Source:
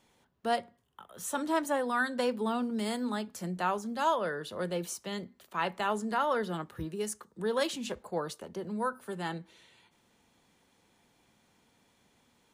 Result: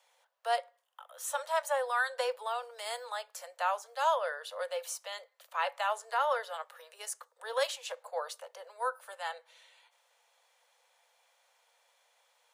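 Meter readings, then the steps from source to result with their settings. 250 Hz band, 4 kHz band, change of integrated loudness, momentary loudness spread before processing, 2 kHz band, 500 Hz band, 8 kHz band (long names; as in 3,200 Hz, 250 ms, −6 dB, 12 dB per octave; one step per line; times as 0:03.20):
below −40 dB, 0.0 dB, −1.5 dB, 9 LU, 0.0 dB, −2.0 dB, 0.0 dB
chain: Butterworth high-pass 490 Hz 96 dB per octave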